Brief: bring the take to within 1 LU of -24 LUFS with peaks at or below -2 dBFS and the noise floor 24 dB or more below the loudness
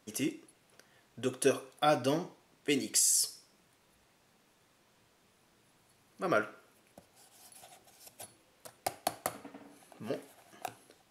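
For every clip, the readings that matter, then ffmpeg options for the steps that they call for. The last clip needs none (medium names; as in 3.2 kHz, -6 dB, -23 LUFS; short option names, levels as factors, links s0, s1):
loudness -32.5 LUFS; peak level -11.0 dBFS; loudness target -24.0 LUFS
-> -af "volume=2.66"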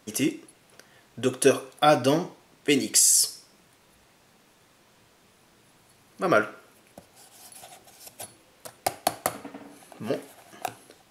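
loudness -24.0 LUFS; peak level -2.5 dBFS; noise floor -60 dBFS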